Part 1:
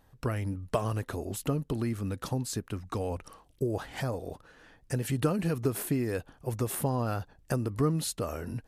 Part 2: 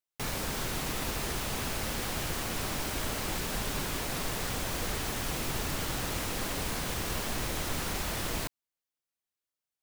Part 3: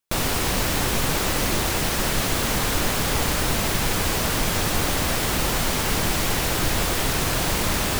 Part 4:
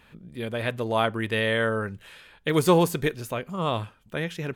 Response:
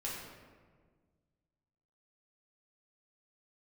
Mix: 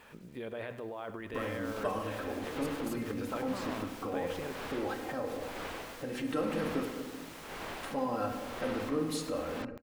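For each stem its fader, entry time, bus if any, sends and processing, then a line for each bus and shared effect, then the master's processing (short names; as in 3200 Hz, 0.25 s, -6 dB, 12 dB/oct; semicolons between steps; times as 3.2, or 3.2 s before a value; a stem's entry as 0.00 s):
-3.5 dB, 1.10 s, muted 6.85–7.83, bus B, send -5.5 dB, echo send -17 dB, low-pass opened by the level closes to 310 Hz, open at -25.5 dBFS; low shelf 430 Hz +5.5 dB; comb 3.8 ms, depth 68%
-12.5 dB, 1.15 s, bus B, no send, no echo send, dry
-7.5 dB, 1.65 s, bus A, no send, no echo send, Bessel low-pass 2500 Hz, order 2; dB-linear tremolo 0.99 Hz, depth 26 dB
-0.5 dB, 0.00 s, bus A, no send, echo send -18.5 dB, high shelf 2100 Hz -11 dB; negative-ratio compressor -33 dBFS, ratio -1; requantised 10-bit, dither none
bus A: 0.0 dB, compressor 2:1, threshold -38 dBFS, peak gain reduction 7 dB
bus B: 0.0 dB, limiter -29.5 dBFS, peak gain reduction 16.5 dB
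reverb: on, RT60 1.6 s, pre-delay 3 ms
echo: feedback echo 0.102 s, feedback 42%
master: tone controls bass -13 dB, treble -4 dB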